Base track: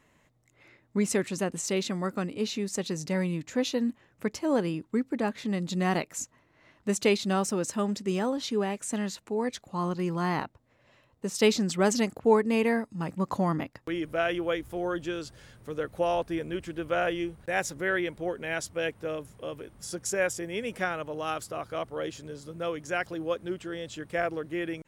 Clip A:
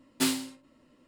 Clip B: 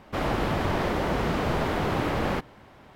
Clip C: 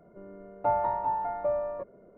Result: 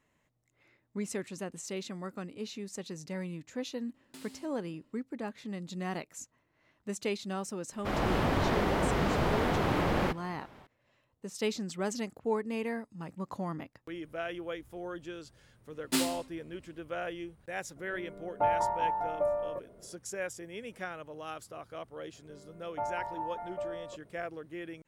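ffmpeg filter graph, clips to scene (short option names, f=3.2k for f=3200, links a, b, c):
-filter_complex "[1:a]asplit=2[a][b];[3:a]asplit=2[c][d];[0:a]volume=-9.5dB[e];[a]acompressor=threshold=-39dB:ratio=6:attack=3.2:release=140:knee=1:detection=peak[f];[2:a]dynaudnorm=f=180:g=3:m=3dB[g];[d]equalizer=f=2.3k:t=o:w=0.82:g=6.5[h];[f]atrim=end=1.07,asetpts=PTS-STARTPTS,volume=-8.5dB,afade=t=in:d=0.004:c=hsin,afade=t=out:st=1.066:d=0.004:c=hsin,adelay=3940[i];[g]atrim=end=2.95,asetpts=PTS-STARTPTS,volume=-5.5dB,afade=t=in:d=0.004:c=hsin,afade=t=out:st=2.946:d=0.004:c=hsin,adelay=7720[j];[b]atrim=end=1.07,asetpts=PTS-STARTPTS,volume=-2.5dB,afade=t=in:d=0.004:c=hsin,afade=t=out:st=1.066:d=0.004:c=hsin,adelay=693252S[k];[c]atrim=end=2.17,asetpts=PTS-STARTPTS,volume=-1.5dB,afade=t=in:d=0.004:c=hsin,afade=t=out:st=2.166:d=0.004:c=hsin,adelay=17760[l];[h]atrim=end=2.17,asetpts=PTS-STARTPTS,volume=-9.5dB,afade=t=in:d=0.004:c=hsin,afade=t=out:st=2.166:d=0.004:c=hsin,adelay=22130[m];[e][i][j][k][l][m]amix=inputs=6:normalize=0"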